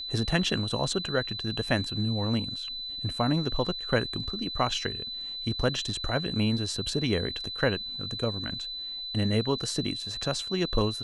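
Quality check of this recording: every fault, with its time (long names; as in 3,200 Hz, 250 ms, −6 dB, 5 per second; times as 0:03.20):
whistle 4,000 Hz −34 dBFS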